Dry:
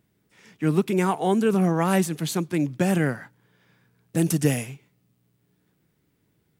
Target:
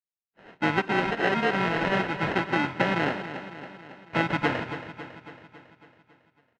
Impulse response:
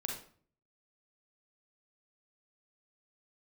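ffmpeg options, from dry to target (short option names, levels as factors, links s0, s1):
-filter_complex "[0:a]agate=range=0.00398:threshold=0.00158:ratio=16:detection=peak,acrusher=samples=38:mix=1:aa=0.000001,crystalizer=i=3:c=0,asplit=2[s0][s1];[1:a]atrim=start_sample=2205,highshelf=f=2800:g=8[s2];[s1][s2]afir=irnorm=-1:irlink=0,volume=0.106[s3];[s0][s3]amix=inputs=2:normalize=0,acompressor=threshold=0.126:ratio=6,asplit=4[s4][s5][s6][s7];[s5]asetrate=29433,aresample=44100,atempo=1.49831,volume=0.316[s8];[s6]asetrate=33038,aresample=44100,atempo=1.33484,volume=0.282[s9];[s7]asetrate=37084,aresample=44100,atempo=1.18921,volume=0.158[s10];[s4][s8][s9][s10]amix=inputs=4:normalize=0,lowpass=f=2200:w=0.5412,lowpass=f=2200:w=1.3066,aemphasis=mode=production:type=riaa,aecho=1:1:276|552|828|1104|1380|1656|1932:0.266|0.154|0.0895|0.0519|0.0301|0.0175|0.0101,volume=1.58"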